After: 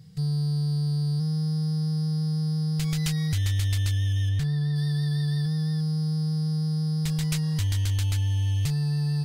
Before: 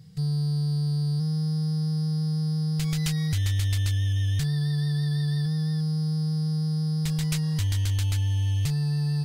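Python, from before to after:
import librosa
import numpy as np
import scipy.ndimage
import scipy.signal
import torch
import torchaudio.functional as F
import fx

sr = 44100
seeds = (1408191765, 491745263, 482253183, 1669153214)

y = fx.high_shelf(x, sr, hz=3800.0, db=-9.5, at=(4.29, 4.76))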